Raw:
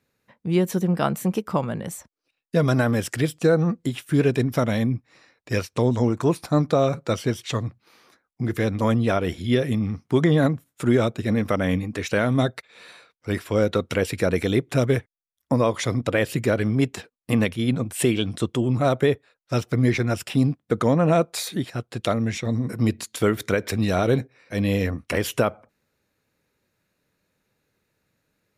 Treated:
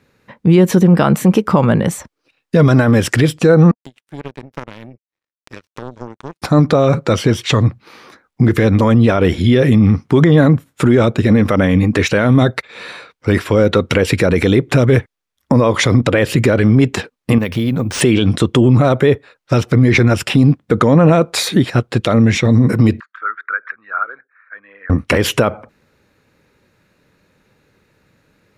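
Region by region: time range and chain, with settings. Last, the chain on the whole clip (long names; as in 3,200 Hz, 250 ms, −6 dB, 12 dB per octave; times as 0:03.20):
0:03.71–0:06.42: high-pass filter 88 Hz + downward compressor 2 to 1, threshold −47 dBFS + power curve on the samples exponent 3
0:17.38–0:18.01: downward compressor 12 to 1, threshold −28 dBFS + bad sample-rate conversion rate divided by 3×, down none, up hold
0:23.00–0:24.90: spectral envelope exaggerated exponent 1.5 + flat-topped band-pass 1,400 Hz, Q 3.1
whole clip: low-pass filter 3,300 Hz 6 dB per octave; parametric band 680 Hz −4 dB 0.22 octaves; boost into a limiter +17.5 dB; level −1 dB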